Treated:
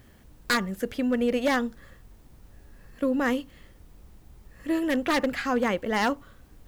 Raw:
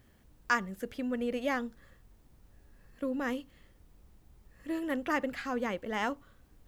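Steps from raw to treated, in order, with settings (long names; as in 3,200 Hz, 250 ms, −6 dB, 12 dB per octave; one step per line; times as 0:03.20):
wave folding −24.5 dBFS
level +8.5 dB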